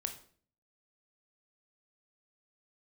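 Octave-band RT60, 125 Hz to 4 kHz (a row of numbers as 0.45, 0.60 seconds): 0.70, 0.65, 0.55, 0.45, 0.45, 0.40 seconds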